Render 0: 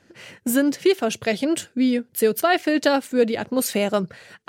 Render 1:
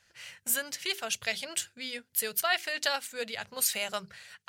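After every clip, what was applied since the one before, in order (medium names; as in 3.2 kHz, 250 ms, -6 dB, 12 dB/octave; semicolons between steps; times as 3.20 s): amplifier tone stack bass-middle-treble 10-0-10; hum notches 50/100/150/200/250/300/350/400 Hz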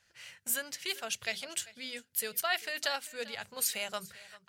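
delay 394 ms -19.5 dB; trim -3.5 dB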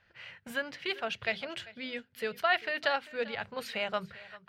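distance through air 370 m; trim +7.5 dB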